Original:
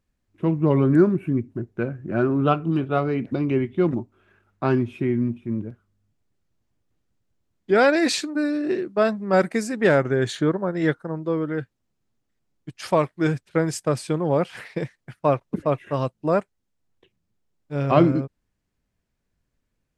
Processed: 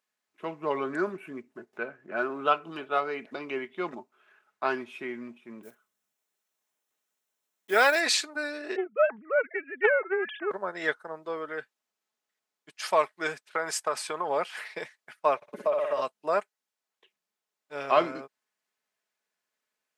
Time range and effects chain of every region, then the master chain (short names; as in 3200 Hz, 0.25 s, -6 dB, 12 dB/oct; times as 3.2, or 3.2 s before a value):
1.73–2.17 high shelf 5300 Hz -8 dB + upward compressor, threshold -36 dBFS
5.63–8.02 block floating point 7-bit + high shelf 7200 Hz +10.5 dB + notch 4700 Hz, Q 9
8.76–10.51 sine-wave speech + Doppler distortion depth 0.11 ms
13.5–14.28 bell 1100 Hz +7.5 dB 1.8 oct + compressor, threshold -18 dBFS
15.36–16.02 bell 580 Hz +12 dB 0.2 oct + flutter echo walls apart 10.3 m, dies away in 0.67 s + compressor, threshold -17 dBFS
whole clip: HPF 740 Hz 12 dB/oct; comb 4.7 ms, depth 33%